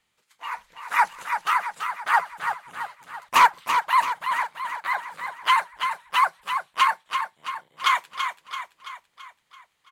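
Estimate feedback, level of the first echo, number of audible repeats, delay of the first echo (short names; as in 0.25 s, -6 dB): 53%, -7.0 dB, 6, 0.334 s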